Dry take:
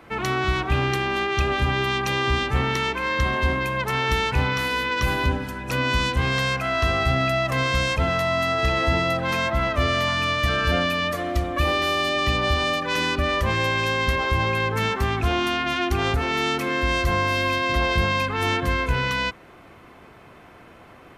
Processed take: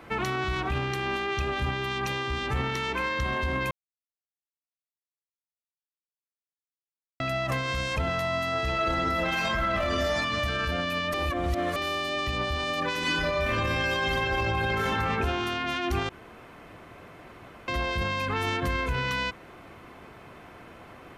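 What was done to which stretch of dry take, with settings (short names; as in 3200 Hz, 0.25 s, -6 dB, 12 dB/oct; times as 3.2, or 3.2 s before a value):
3.71–7.2 mute
8.74–10.17 reverb throw, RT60 1 s, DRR -7.5 dB
11.14–11.76 reverse
13–14.84 reverb throw, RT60 1.6 s, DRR -11 dB
16.09–17.68 room tone
whole clip: limiter -19 dBFS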